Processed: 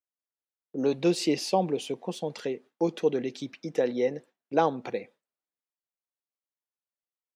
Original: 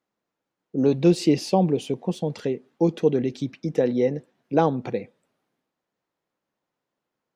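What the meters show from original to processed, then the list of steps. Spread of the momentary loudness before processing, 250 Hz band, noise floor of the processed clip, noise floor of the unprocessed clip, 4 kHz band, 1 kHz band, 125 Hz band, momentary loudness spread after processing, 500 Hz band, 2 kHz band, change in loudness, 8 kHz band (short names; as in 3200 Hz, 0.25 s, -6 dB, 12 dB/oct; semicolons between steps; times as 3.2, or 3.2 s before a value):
11 LU, -7.5 dB, under -85 dBFS, -85 dBFS, 0.0 dB, -2.0 dB, -12.0 dB, 10 LU, -4.5 dB, -0.5 dB, -5.5 dB, n/a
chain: gate with hold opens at -39 dBFS; HPF 600 Hz 6 dB/oct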